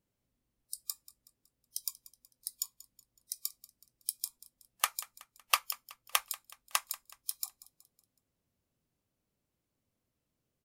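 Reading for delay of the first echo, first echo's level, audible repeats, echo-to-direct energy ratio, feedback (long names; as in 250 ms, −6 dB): 186 ms, −18.5 dB, 3, −17.5 dB, 45%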